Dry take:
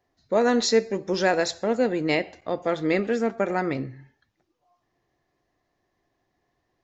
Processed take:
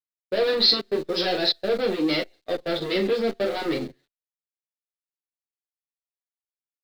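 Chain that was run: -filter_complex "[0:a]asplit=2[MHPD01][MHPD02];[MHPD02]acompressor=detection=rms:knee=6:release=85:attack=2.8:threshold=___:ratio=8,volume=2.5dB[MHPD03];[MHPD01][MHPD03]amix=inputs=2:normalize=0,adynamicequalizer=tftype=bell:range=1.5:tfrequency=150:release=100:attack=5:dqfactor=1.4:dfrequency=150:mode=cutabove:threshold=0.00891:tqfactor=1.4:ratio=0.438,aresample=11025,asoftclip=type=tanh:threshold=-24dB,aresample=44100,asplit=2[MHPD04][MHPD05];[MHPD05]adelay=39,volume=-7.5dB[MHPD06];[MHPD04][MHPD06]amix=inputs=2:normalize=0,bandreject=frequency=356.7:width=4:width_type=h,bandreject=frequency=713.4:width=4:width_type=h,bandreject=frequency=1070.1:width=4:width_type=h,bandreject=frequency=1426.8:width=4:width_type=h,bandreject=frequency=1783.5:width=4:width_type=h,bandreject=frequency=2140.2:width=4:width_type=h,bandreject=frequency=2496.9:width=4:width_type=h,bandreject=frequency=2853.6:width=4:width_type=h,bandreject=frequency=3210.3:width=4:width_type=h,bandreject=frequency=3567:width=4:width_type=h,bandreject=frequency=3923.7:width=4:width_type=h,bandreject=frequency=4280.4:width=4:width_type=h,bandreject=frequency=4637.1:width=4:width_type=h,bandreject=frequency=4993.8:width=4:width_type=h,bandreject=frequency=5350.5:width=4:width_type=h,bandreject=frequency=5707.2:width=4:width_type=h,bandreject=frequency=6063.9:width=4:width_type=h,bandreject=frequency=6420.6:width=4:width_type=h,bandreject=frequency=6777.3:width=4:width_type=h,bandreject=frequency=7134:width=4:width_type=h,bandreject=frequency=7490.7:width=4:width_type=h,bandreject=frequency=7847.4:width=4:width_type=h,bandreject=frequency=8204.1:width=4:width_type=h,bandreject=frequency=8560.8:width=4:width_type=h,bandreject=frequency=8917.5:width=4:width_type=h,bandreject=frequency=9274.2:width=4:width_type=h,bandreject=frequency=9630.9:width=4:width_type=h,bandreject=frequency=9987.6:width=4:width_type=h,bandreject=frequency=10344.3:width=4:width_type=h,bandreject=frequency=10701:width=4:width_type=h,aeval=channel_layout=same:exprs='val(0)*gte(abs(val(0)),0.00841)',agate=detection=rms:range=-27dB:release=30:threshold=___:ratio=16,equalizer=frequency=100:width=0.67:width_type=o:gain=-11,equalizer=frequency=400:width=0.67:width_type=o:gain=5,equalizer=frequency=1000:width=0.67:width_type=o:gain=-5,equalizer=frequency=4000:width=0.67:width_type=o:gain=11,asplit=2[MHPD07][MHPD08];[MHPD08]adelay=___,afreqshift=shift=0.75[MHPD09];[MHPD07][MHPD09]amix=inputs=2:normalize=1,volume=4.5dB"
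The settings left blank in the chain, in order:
-33dB, -31dB, 9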